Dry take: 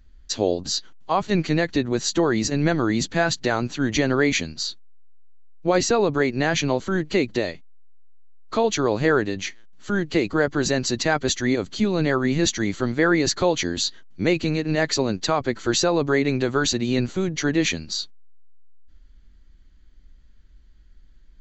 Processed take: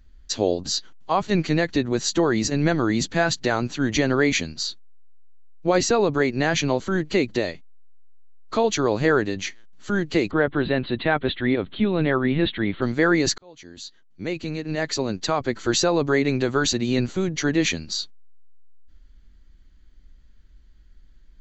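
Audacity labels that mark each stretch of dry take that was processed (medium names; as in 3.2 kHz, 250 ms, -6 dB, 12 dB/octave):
10.310000	12.820000	steep low-pass 3.9 kHz 96 dB/octave
13.380000	15.670000	fade in linear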